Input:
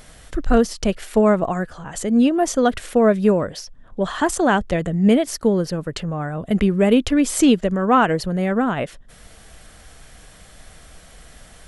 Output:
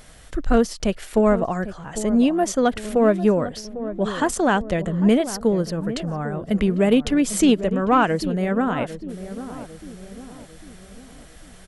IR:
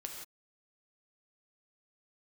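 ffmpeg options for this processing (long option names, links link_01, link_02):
-filter_complex "[0:a]aeval=exprs='0.668*(cos(1*acos(clip(val(0)/0.668,-1,1)))-cos(1*PI/2))+0.0266*(cos(4*acos(clip(val(0)/0.668,-1,1)))-cos(4*PI/2))+0.0119*(cos(6*acos(clip(val(0)/0.668,-1,1)))-cos(6*PI/2))':channel_layout=same,asplit=2[link_01][link_02];[link_02]adelay=800,lowpass=frequency=830:poles=1,volume=-11.5dB,asplit=2[link_03][link_04];[link_04]adelay=800,lowpass=frequency=830:poles=1,volume=0.51,asplit=2[link_05][link_06];[link_06]adelay=800,lowpass=frequency=830:poles=1,volume=0.51,asplit=2[link_07][link_08];[link_08]adelay=800,lowpass=frequency=830:poles=1,volume=0.51,asplit=2[link_09][link_10];[link_10]adelay=800,lowpass=frequency=830:poles=1,volume=0.51[link_11];[link_01][link_03][link_05][link_07][link_09][link_11]amix=inputs=6:normalize=0,volume=-2dB"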